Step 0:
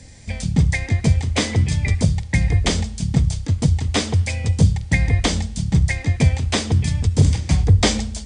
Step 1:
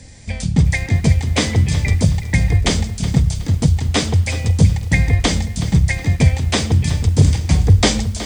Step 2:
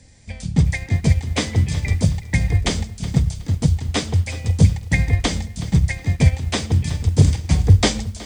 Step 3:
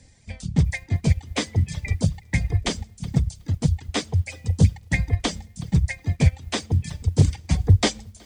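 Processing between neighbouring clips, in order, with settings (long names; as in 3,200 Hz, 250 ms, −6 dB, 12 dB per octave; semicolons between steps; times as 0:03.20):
feedback echo at a low word length 370 ms, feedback 35%, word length 6 bits, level −13 dB; level +2.5 dB
expander for the loud parts 1.5 to 1, over −24 dBFS
reverb reduction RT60 1.8 s; highs frequency-modulated by the lows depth 0.14 ms; level −3 dB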